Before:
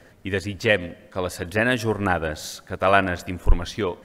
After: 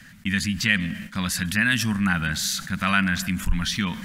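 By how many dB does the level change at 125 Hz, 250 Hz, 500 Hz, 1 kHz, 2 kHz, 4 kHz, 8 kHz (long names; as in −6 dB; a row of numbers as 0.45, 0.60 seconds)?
+1.5, +4.0, −19.5, −5.5, +2.0, +5.5, +9.0 decibels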